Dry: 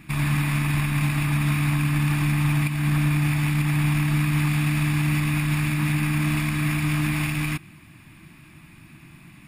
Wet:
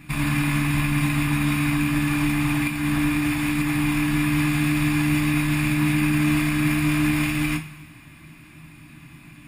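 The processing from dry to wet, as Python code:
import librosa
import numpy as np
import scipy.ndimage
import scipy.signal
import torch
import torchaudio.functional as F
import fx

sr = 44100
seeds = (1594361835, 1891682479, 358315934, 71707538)

y = fx.rev_double_slope(x, sr, seeds[0], early_s=0.27, late_s=1.7, knee_db=-17, drr_db=2.0)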